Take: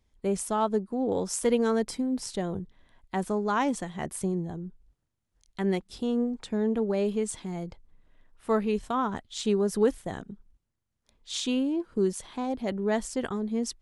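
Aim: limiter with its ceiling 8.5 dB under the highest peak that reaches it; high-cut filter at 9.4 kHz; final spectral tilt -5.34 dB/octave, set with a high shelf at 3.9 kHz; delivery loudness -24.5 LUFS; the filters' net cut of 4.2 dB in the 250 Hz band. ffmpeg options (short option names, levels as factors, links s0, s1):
-af "lowpass=9400,equalizer=f=250:t=o:g=-5,highshelf=f=3900:g=-9,volume=2.99,alimiter=limit=0.211:level=0:latency=1"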